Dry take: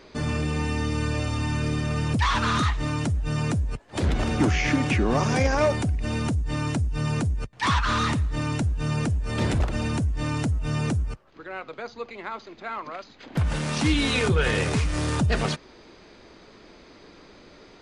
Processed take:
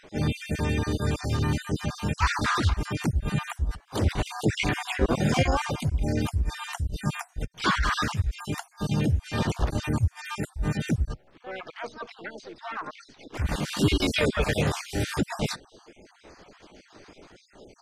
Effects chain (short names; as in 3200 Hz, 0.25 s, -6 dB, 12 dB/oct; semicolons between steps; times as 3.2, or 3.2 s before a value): random spectral dropouts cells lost 54%; harmoniser +5 st -4 dB